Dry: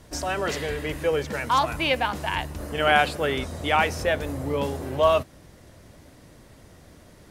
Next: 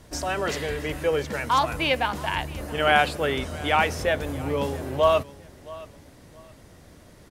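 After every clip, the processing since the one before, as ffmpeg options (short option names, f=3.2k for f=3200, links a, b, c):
-af "aecho=1:1:669|1338:0.1|0.026"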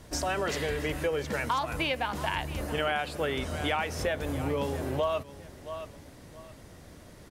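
-af "acompressor=threshold=-26dB:ratio=6"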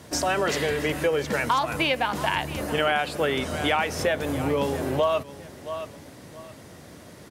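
-af "highpass=110,volume=6dB"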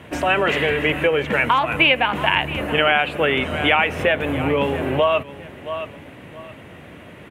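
-af "highshelf=f=3.7k:t=q:w=3:g=-11,volume=4.5dB"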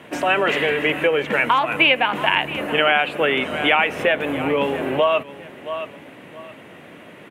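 -af "highpass=190"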